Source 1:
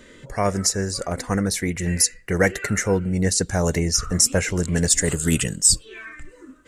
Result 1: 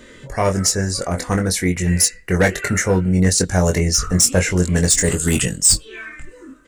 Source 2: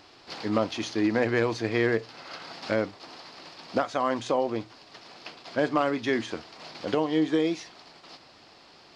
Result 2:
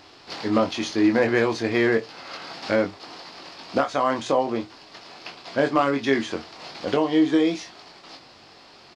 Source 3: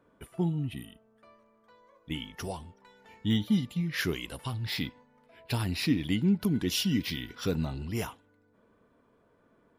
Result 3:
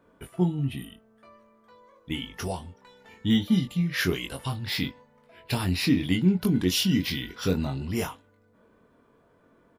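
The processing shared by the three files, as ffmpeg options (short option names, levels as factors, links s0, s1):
-filter_complex "[0:a]asplit=2[s0][s1];[s1]aeval=exprs='0.2*(abs(mod(val(0)/0.2+3,4)-2)-1)':c=same,volume=0.473[s2];[s0][s2]amix=inputs=2:normalize=0,asplit=2[s3][s4];[s4]adelay=22,volume=0.531[s5];[s3][s5]amix=inputs=2:normalize=0"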